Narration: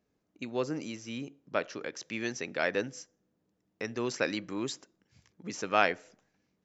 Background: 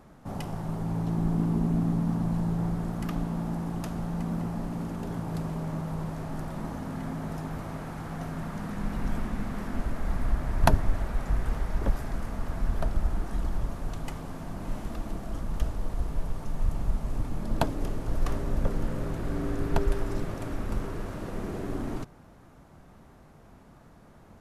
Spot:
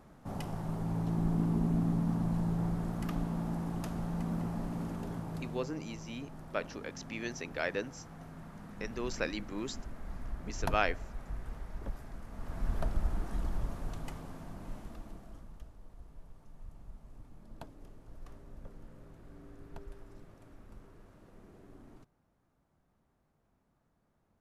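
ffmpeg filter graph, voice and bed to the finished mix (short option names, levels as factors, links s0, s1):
-filter_complex "[0:a]adelay=5000,volume=0.596[s0];[1:a]volume=1.68,afade=t=out:st=4.89:d=0.9:silence=0.334965,afade=t=in:st=12.28:d=0.44:silence=0.375837,afade=t=out:st=13.77:d=1.87:silence=0.141254[s1];[s0][s1]amix=inputs=2:normalize=0"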